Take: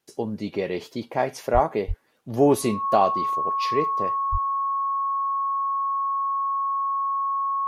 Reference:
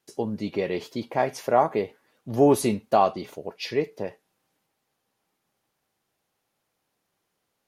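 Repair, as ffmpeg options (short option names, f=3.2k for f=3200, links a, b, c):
-filter_complex "[0:a]bandreject=f=1.1k:w=30,asplit=3[a][b][c];[a]afade=t=out:st=1.53:d=0.02[d];[b]highpass=f=140:w=0.5412,highpass=f=140:w=1.3066,afade=t=in:st=1.53:d=0.02,afade=t=out:st=1.65:d=0.02[e];[c]afade=t=in:st=1.65:d=0.02[f];[d][e][f]amix=inputs=3:normalize=0,asplit=3[g][h][i];[g]afade=t=out:st=1.87:d=0.02[j];[h]highpass=f=140:w=0.5412,highpass=f=140:w=1.3066,afade=t=in:st=1.87:d=0.02,afade=t=out:st=1.99:d=0.02[k];[i]afade=t=in:st=1.99:d=0.02[l];[j][k][l]amix=inputs=3:normalize=0,asplit=3[m][n][o];[m]afade=t=out:st=4.31:d=0.02[p];[n]highpass=f=140:w=0.5412,highpass=f=140:w=1.3066,afade=t=in:st=4.31:d=0.02,afade=t=out:st=4.43:d=0.02[q];[o]afade=t=in:st=4.43:d=0.02[r];[p][q][r]amix=inputs=3:normalize=0"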